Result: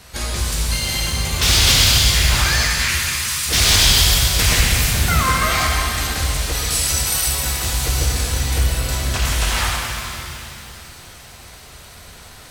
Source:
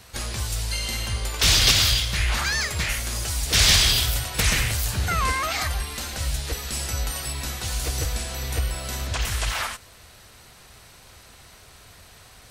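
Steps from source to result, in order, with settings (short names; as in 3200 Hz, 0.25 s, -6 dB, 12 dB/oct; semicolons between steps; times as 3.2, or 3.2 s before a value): 2.65–3.49 steep high-pass 970 Hz 72 dB/oct; 6.55–7.28 tilt +2 dB/oct; in parallel at -11 dB: sine folder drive 11 dB, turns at -4 dBFS; on the sum: shimmer reverb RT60 2.7 s, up +7 st, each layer -8 dB, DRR -1.5 dB; gain -4.5 dB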